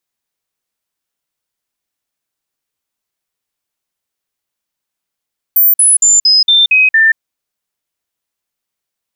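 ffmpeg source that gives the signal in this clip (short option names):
-f lavfi -i "aevalsrc='0.562*clip(min(mod(t,0.23),0.18-mod(t,0.23))/0.005,0,1)*sin(2*PI*14300*pow(2,-floor(t/0.23)/2)*mod(t,0.23))':d=1.61:s=44100"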